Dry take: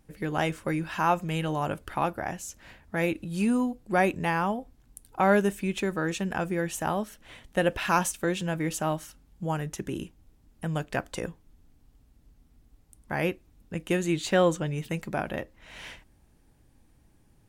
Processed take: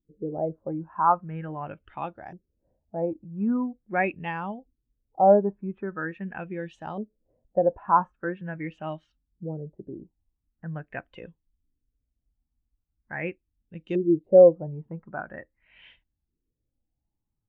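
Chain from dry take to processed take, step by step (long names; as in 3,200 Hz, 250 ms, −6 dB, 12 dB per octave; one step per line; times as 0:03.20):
auto-filter low-pass saw up 0.43 Hz 360–4,800 Hz
every bin expanded away from the loudest bin 1.5 to 1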